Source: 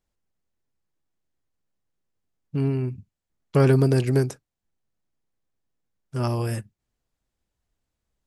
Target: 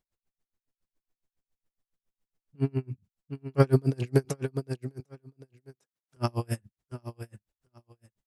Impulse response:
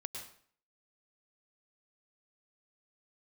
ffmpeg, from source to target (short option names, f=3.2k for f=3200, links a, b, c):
-filter_complex "[0:a]asettb=1/sr,asplit=3[a][b][c];[a]atrim=end=4.254[d];[b]atrim=start=4.25:end=6.17,asetpts=PTS-STARTPTS,afade=t=in:d=0.004:c=qsin,afade=t=out:st=1.916:d=0.004:c=qsin,highpass=f=550:p=1[e];[c]atrim=start=6.166[f];[d][e]acrossfade=d=0.004:c1=hsin:c2=qsin[g];[g][f]acrossfade=d=0.004:c1=qsin:c2=hsin,aecho=1:1:751|1502:0.316|0.0474,aeval=exprs='val(0)*pow(10,-35*(0.5-0.5*cos(2*PI*7.2*n/s))/20)':c=same,volume=1dB"